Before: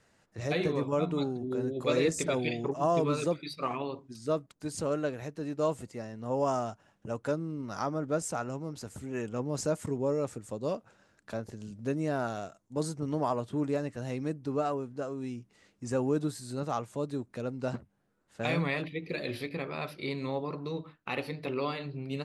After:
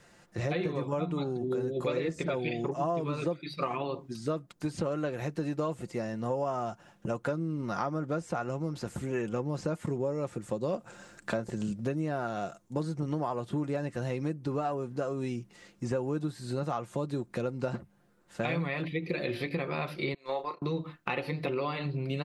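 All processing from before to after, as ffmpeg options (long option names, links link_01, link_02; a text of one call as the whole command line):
ffmpeg -i in.wav -filter_complex "[0:a]asettb=1/sr,asplit=3[link_01][link_02][link_03];[link_01]atrim=end=10.734[link_04];[link_02]atrim=start=10.73:end=11.73,asetpts=PTS-STARTPTS,afade=type=in:duration=0.004:curve=qsin,afade=type=out:start_time=0.996:duration=0.004:curve=qsin,equalizer=frequency=7800:width_type=o:width=0.43:gain=9,bandreject=frequency=50:width_type=h:width=6,bandreject=frequency=100:width_type=h:width=6,bandreject=frequency=150:width_type=h:width=6,acontrast=27[link_05];[link_03]atrim=start=11.726[link_06];[link_04][link_05]acrossfade=duration=0.004:curve1=hsin:curve2=qsin[link_07];[link_07][link_06]acrossfade=duration=0.004:curve1=qsin:curve2=hsin,asettb=1/sr,asplit=3[link_08][link_09][link_10];[link_08]atrim=end=20.144[link_11];[link_09]atrim=start=20.14:end=20.62,asetpts=PTS-STARTPTS,afade=type=in:duration=0.004:curve=qsin,afade=type=out:start_time=0.476:duration=0.004:curve=qsin,highpass=530,agate=range=-22dB:threshold=-40dB:ratio=16:release=100:detection=peak,asplit=2[link_12][link_13];[link_13]adelay=30,volume=-8.5dB[link_14];[link_12][link_14]amix=inputs=2:normalize=0,atrim=end_sample=21168[link_15];[link_10]atrim=start=20.616[link_16];[link_11][link_15]acrossfade=duration=0.004:curve1=hsin:curve2=qsin[link_17];[link_17][link_16]acrossfade=duration=0.004:curve1=qsin:curve2=hsin,acrossover=split=3800[link_18][link_19];[link_19]acompressor=threshold=-58dB:ratio=4:attack=1:release=60[link_20];[link_18][link_20]amix=inputs=2:normalize=0,aecho=1:1:5.7:0.42,acompressor=threshold=-36dB:ratio=6,volume=7.5dB" out.wav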